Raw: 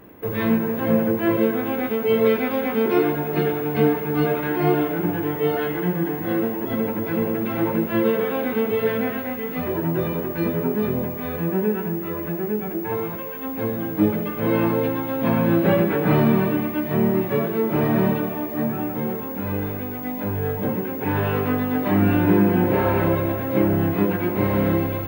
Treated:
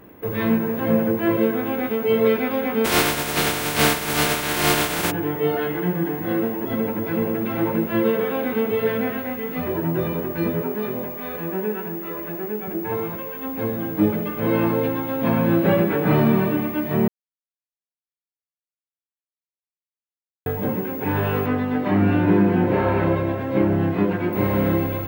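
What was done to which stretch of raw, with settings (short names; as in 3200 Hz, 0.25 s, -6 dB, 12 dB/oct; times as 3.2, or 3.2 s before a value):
2.84–5.1 spectral contrast lowered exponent 0.33
10.62–12.68 HPF 370 Hz 6 dB/oct
17.08–20.46 mute
21.46–24.33 air absorption 53 m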